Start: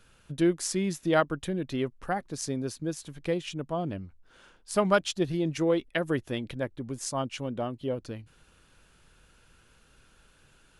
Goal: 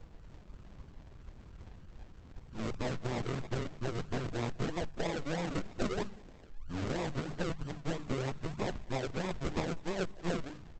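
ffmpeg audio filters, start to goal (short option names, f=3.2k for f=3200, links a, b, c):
-filter_complex "[0:a]areverse,lowpass=f=2.4k:w=0.5412,lowpass=f=2.4k:w=1.3066,aemphasis=mode=reproduction:type=bsi,bandreject=f=50:t=h:w=6,bandreject=f=100:t=h:w=6,bandreject=f=150:t=h:w=6,bandreject=f=200:t=h:w=6,acompressor=threshold=-31dB:ratio=6,aresample=8000,aeval=exprs='abs(val(0))':c=same,aresample=44100,acrusher=samples=42:mix=1:aa=0.000001:lfo=1:lforange=25.2:lforate=3.1,asplit=2[a][b];[b]aecho=0:1:197:0.0708[c];[a][c]amix=inputs=2:normalize=0,volume=4dB" -ar 48000 -c:a libopus -b:a 12k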